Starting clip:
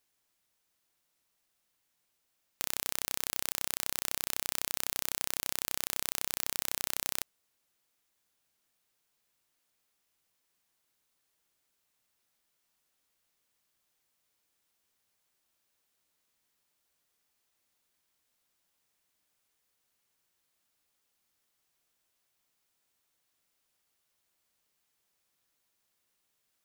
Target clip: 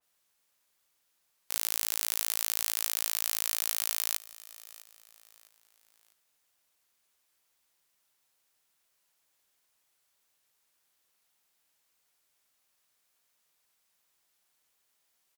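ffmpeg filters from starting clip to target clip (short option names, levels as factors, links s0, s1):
-af "bass=f=250:g=-6,treble=f=4000:g=1,acontrast=29,aecho=1:1:1131|2262|3393:0.112|0.0494|0.0217,asetrate=76440,aresample=44100,adynamicequalizer=threshold=0.001:dfrequency=2500:dqfactor=0.7:tfrequency=2500:tqfactor=0.7:attack=5:release=100:ratio=0.375:range=2:mode=boostabove:tftype=highshelf"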